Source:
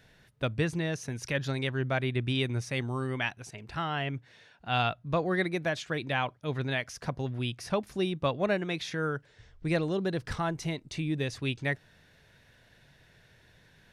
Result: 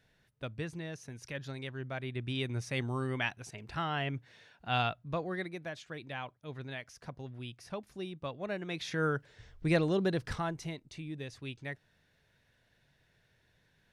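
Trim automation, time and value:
1.94 s -10 dB
2.81 s -2 dB
4.71 s -2 dB
5.58 s -11 dB
8.42 s -11 dB
9.03 s +0.5 dB
10.06 s +0.5 dB
11.00 s -10.5 dB

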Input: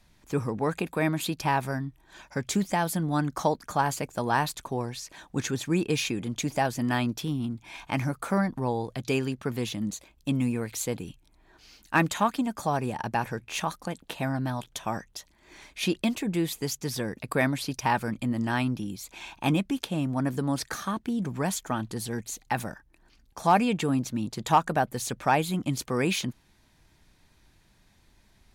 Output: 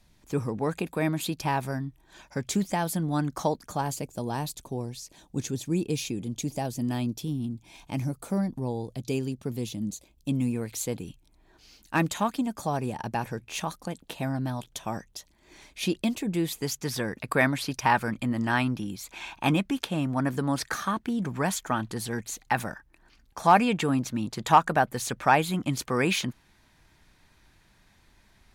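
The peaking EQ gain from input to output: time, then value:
peaking EQ 1.5 kHz 1.9 oct
3.44 s -3.5 dB
4.23 s -14.5 dB
9.93 s -14.5 dB
10.70 s -4.5 dB
16.23 s -4.5 dB
16.87 s +4.5 dB

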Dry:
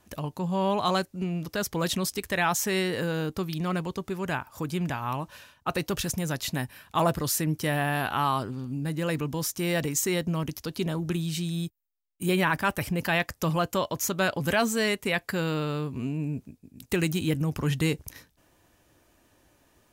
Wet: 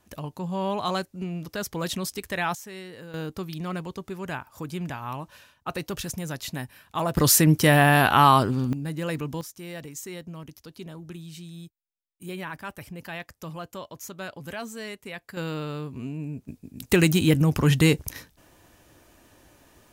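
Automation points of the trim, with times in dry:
-2 dB
from 2.55 s -13.5 dB
from 3.14 s -3 dB
from 7.17 s +9.5 dB
from 8.73 s -1 dB
from 9.41 s -11 dB
from 15.37 s -3 dB
from 16.48 s +7 dB

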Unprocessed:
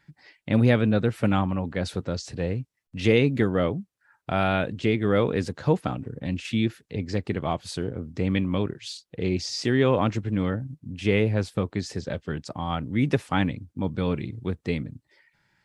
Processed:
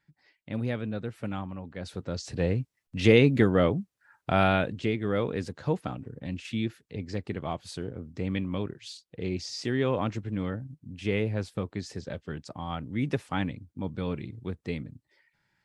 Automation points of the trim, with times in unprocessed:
1.73 s -11.5 dB
2.41 s +1 dB
4.44 s +1 dB
4.97 s -6 dB

